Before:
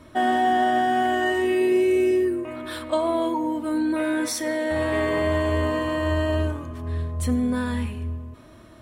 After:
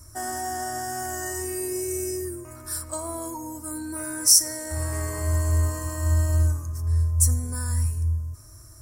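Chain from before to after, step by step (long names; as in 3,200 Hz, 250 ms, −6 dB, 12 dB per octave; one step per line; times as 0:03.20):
drawn EQ curve 110 Hz 0 dB, 210 Hz −25 dB, 330 Hz −16 dB, 520 Hz −20 dB, 1,400 Hz −12 dB, 3,500 Hz −28 dB, 5,300 Hz +8 dB, 13,000 Hz +11 dB
level +6 dB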